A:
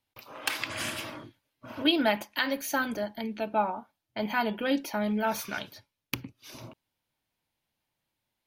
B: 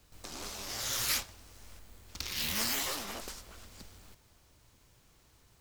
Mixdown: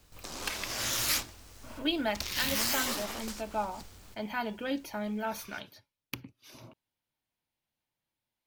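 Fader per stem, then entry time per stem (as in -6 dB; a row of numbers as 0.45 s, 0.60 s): -6.0 dB, +2.0 dB; 0.00 s, 0.00 s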